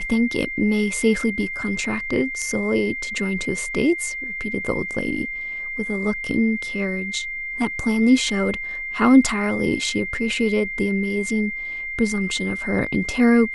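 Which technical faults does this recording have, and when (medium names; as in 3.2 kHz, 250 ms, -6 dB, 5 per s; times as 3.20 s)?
whine 2.1 kHz -27 dBFS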